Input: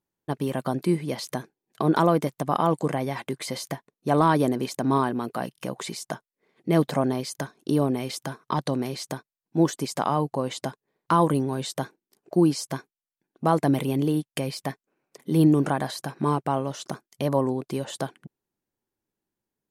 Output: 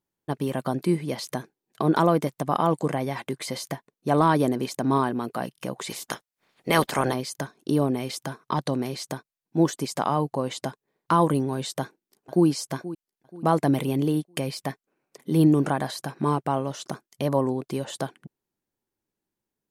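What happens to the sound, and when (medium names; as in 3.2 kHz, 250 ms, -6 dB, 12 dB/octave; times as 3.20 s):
5.89–7.13 s: spectral peaks clipped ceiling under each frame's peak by 20 dB
11.80–12.46 s: echo throw 480 ms, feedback 40%, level -15 dB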